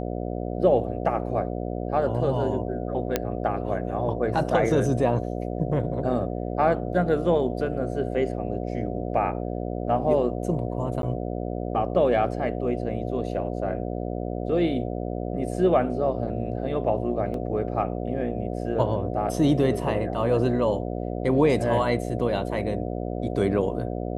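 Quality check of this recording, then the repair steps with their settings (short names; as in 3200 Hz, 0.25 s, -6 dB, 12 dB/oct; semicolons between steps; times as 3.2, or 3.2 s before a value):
buzz 60 Hz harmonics 12 -30 dBFS
3.16 pop -7 dBFS
11.02–11.03 gap 12 ms
17.34 gap 2.3 ms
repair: de-click; de-hum 60 Hz, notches 12; interpolate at 11.02, 12 ms; interpolate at 17.34, 2.3 ms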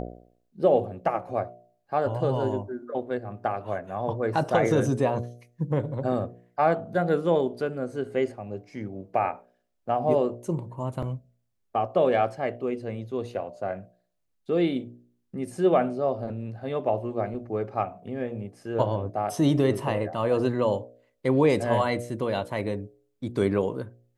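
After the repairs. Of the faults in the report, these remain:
none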